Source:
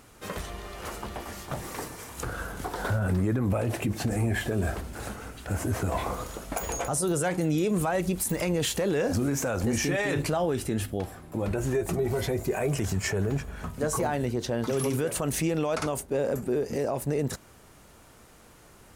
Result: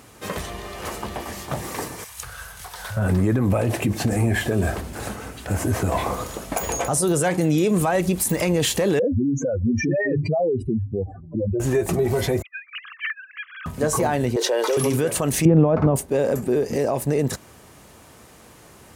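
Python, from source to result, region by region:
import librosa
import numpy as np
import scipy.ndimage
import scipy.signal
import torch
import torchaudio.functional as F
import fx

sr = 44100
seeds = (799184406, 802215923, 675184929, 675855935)

y = fx.chain(x, sr, fx.tone_stack(knobs='10-0-10'),
    fx.notch(hz=7300.0, q=18.0), at=(2.04, 2.97))
y = fx.chain(y, sr, fx.spec_expand(power=3.2),
    fx.air_absorb(metres=110.0), at=(8.99, 11.6))
y = fx.chain(y, sr, fx.sine_speech(),
    fx.over_compress(threshold_db=-34.0, ratio=-1.0),
    fx.steep_highpass(hz=1200.0, slope=72), at=(12.42, 13.66))
y = fx.chain(y, sr, fx.steep_highpass(hz=370.0, slope=36),
    fx.comb(ms=2.1, depth=0.32),
    fx.env_flatten(amount_pct=70), at=(14.36, 14.77))
y = fx.chain(y, sr, fx.lowpass(hz=1100.0, slope=12),
    fx.peak_eq(hz=120.0, db=11.5, octaves=2.6), at=(15.45, 15.96))
y = scipy.signal.sosfilt(scipy.signal.butter(2, 63.0, 'highpass', fs=sr, output='sos'), y)
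y = fx.notch(y, sr, hz=1400.0, q=14.0)
y = F.gain(torch.from_numpy(y), 6.5).numpy()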